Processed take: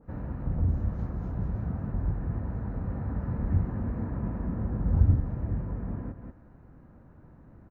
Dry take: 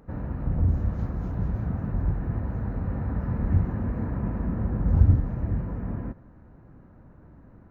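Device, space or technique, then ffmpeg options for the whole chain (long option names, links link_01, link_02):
ducked delay: -filter_complex "[0:a]asplit=3[link_01][link_02][link_03];[link_02]adelay=186,volume=-4dB[link_04];[link_03]apad=whole_len=347903[link_05];[link_04][link_05]sidechaincompress=threshold=-34dB:ratio=8:attack=5.9:release=371[link_06];[link_01][link_06]amix=inputs=2:normalize=0,adynamicequalizer=threshold=0.00282:dfrequency=1800:dqfactor=0.7:tfrequency=1800:tqfactor=0.7:attack=5:release=100:ratio=0.375:range=2:mode=cutabove:tftype=highshelf,volume=-3.5dB"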